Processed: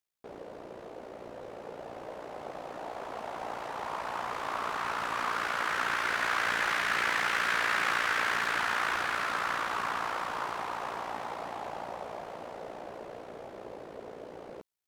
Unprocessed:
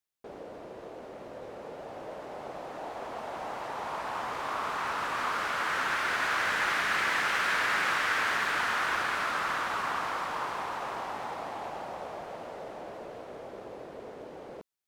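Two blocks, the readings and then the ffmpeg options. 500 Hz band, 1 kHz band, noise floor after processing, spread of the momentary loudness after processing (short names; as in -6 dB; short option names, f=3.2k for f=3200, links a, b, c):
-1.0 dB, -1.0 dB, -47 dBFS, 18 LU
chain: -af "tremolo=f=58:d=0.621,volume=2dB"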